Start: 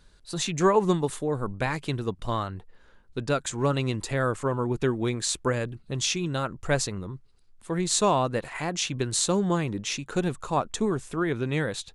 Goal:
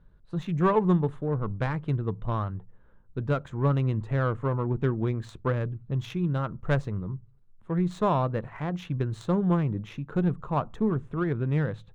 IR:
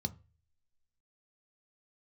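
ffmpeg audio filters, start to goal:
-filter_complex "[0:a]adynamicsmooth=sensitivity=0.5:basefreq=1.2k,aexciter=amount=2.7:drive=5.1:freq=9.6k,asplit=2[a][b];[1:a]atrim=start_sample=2205,afade=t=out:st=0.31:d=0.01,atrim=end_sample=14112,highshelf=f=7.2k:g=7.5[c];[b][c]afir=irnorm=-1:irlink=0,volume=-14dB[d];[a][d]amix=inputs=2:normalize=0"

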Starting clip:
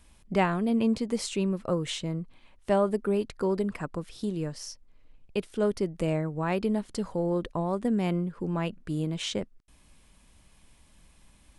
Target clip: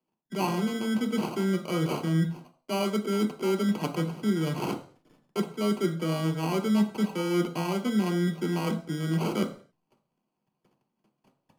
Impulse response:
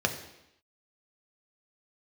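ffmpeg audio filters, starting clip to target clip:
-filter_complex "[0:a]agate=range=-34dB:threshold=-51dB:ratio=16:detection=peak,areverse,acompressor=threshold=-40dB:ratio=8,areverse,acrusher=samples=25:mix=1:aa=0.000001[a];[1:a]atrim=start_sample=2205,asetrate=83790,aresample=44100[b];[a][b]afir=irnorm=-1:irlink=0,volume=8.5dB"

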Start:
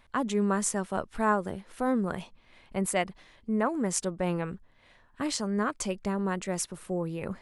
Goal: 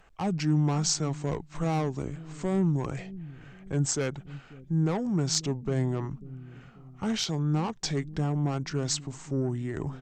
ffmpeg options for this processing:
-filter_complex "[0:a]acrossover=split=420|5600[a][b][c];[a]aecho=1:1:401|802|1203|1604:0.188|0.081|0.0348|0.015[d];[b]asoftclip=type=tanh:threshold=-32dB[e];[d][e][c]amix=inputs=3:normalize=0,asetrate=32667,aresample=44100,volume=2.5dB"

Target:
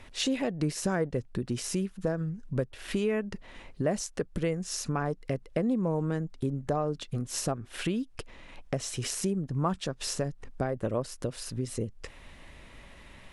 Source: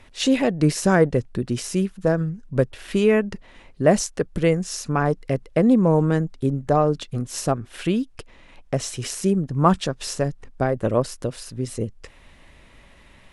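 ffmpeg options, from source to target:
-af "acompressor=threshold=-31dB:ratio=2.5"

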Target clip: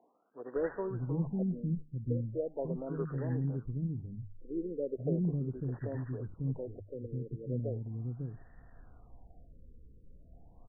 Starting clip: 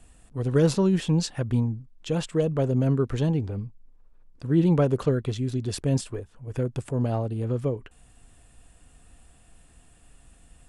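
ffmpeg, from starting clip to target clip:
-filter_complex "[0:a]highshelf=f=2.3k:g=11.5,bandreject=f=50:t=h:w=6,bandreject=f=100:t=h:w=6,bandreject=f=150:t=h:w=6,areverse,acompressor=mode=upward:threshold=-30dB:ratio=2.5,areverse,asplit=2[a][b];[b]asetrate=52444,aresample=44100,atempo=0.840896,volume=-18dB[c];[a][c]amix=inputs=2:normalize=0,acrossover=split=3300[d][e];[e]aeval=exprs='clip(val(0),-1,0.0211)':c=same[f];[d][f]amix=inputs=2:normalize=0,acrossover=split=300|1300[g][h][i];[i]adelay=80[j];[g]adelay=550[k];[k][h][j]amix=inputs=3:normalize=0,afftfilt=real='re*lt(b*sr/1024,520*pow(2000/520,0.5+0.5*sin(2*PI*0.38*pts/sr)))':imag='im*lt(b*sr/1024,520*pow(2000/520,0.5+0.5*sin(2*PI*0.38*pts/sr)))':win_size=1024:overlap=0.75,volume=-9dB"

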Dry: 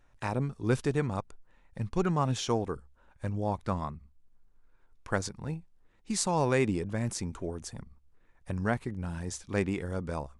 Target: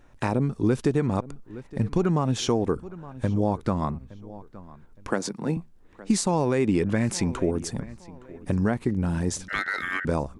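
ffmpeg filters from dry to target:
-filter_complex "[0:a]asettb=1/sr,asplit=3[a][b][c];[a]atrim=end=5.104[d];[b]atrim=start=5.1:end=5.57,asetpts=PTS-STARTPTS,afade=t=in:d=0.004:c=qsin,afade=t=out:st=0.466:d=0.004:c=qsin,highpass=f=170:w=0.5412,highpass=f=170:w=1.3066[e];[c]atrim=start=5.566[f];[d][e]acrossfade=d=0.004:c1=hsin:c2=qsin[g];[g][f]acrossfade=d=0.004:c1=qsin:c2=hsin,asplit=2[h][i];[i]alimiter=limit=-22.5dB:level=0:latency=1:release=207,volume=3dB[j];[h][j]amix=inputs=2:normalize=0,asettb=1/sr,asplit=3[k][l][m];[k]atrim=end=6.684[n];[l]atrim=start=6.68:end=7.44,asetpts=PTS-STARTPTS,afade=t=in:d=0.004:c=qsin,afade=t=out:st=0.756:d=0.004:c=qsin,equalizer=f=2.2k:t=o:w=1.8:g=7.5[o];[m]atrim=start=7.436[p];[n][o]acrossfade=d=0.004:c1=hsin:c2=qsin[q];[q][p]acrossfade=d=0.004:c1=qsin:c2=hsin,asplit=2[r][s];[s]adelay=866,lowpass=f=3.9k:p=1,volume=-21.5dB,asplit=2[t][u];[u]adelay=866,lowpass=f=3.9k:p=1,volume=0.33[v];[t][v]amix=inputs=2:normalize=0[w];[r][w]amix=inputs=2:normalize=0,asettb=1/sr,asplit=3[x][y][z];[x]atrim=end=9.484[aa];[y]atrim=start=9.48:end=10.05,asetpts=PTS-STARTPTS,afade=t=in:d=0.004:c=qsin,afade=t=out:st=0.566:d=0.004:c=qsin,aeval=exprs='val(0)*sin(2*PI*1700*n/s)':c=same[ab];[z]atrim=start=10.046[ac];[aa][ab]acrossfade=d=0.004:c1=hsin:c2=qsin[ad];[ad][ac]acrossfade=d=0.004:c1=qsin:c2=hsin,acompressor=threshold=-23dB:ratio=6,equalizer=f=280:t=o:w=2:g=7"

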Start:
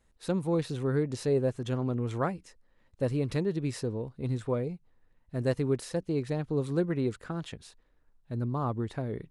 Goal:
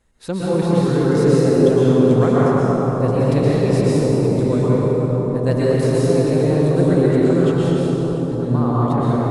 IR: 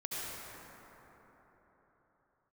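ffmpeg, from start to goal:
-filter_complex "[1:a]atrim=start_sample=2205,asetrate=26901,aresample=44100[a];[0:a][a]afir=irnorm=-1:irlink=0,volume=7.5dB"

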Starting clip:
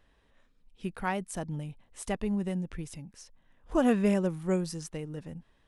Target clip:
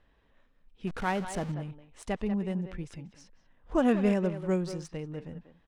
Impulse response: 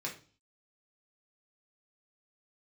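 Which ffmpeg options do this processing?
-filter_complex "[0:a]asettb=1/sr,asplit=3[a][b][c];[a]atrim=end=0.874[d];[b]atrim=start=0.87:end=1.52,asetpts=PTS-STARTPTS,afade=t=in:d=0.004:c=qsin,afade=t=out:st=0.646:d=0.004:c=qsin,aeval=exprs='val(0)+0.5*0.0168*sgn(val(0))':c=same[e];[c]atrim=start=1.516[f];[d][e]acrossfade=d=0.004:c1=hsin:c2=qsin[g];[g][f]acrossfade=d=0.004:c1=qsin:c2=hsin,asplit=2[h][i];[i]adelay=190,highpass=300,lowpass=3.4k,asoftclip=type=hard:threshold=-23.5dB,volume=-9dB[j];[h][j]amix=inputs=2:normalize=0,adynamicsmooth=sensitivity=6.5:basefreq=4.9k"

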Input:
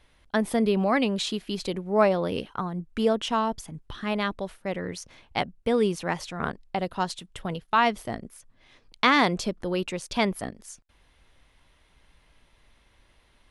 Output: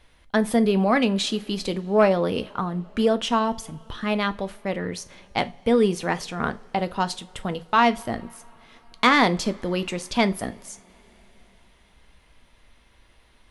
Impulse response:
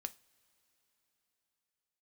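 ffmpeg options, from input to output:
-filter_complex "[0:a]acontrast=68[a];[1:a]atrim=start_sample=2205[b];[a][b]afir=irnorm=-1:irlink=0"

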